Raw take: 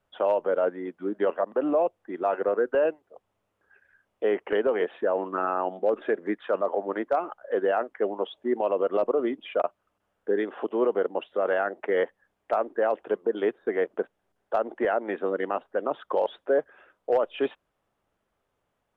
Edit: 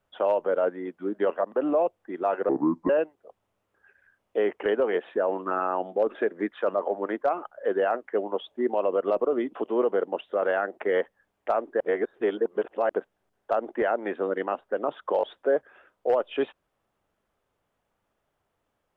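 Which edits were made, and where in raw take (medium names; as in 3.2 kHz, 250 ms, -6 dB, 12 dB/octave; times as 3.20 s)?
2.49–2.76 s: speed 67%
9.42–10.58 s: delete
12.83–13.92 s: reverse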